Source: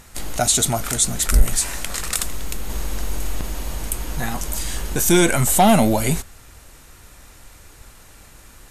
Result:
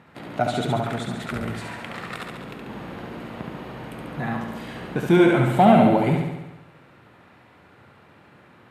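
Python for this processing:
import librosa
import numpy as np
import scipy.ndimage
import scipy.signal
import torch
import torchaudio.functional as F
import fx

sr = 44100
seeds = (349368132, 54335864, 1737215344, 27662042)

y = scipy.signal.sosfilt(scipy.signal.butter(4, 120.0, 'highpass', fs=sr, output='sos'), x)
y = fx.air_absorb(y, sr, metres=480.0)
y = fx.room_flutter(y, sr, wall_m=12.0, rt60_s=1.0)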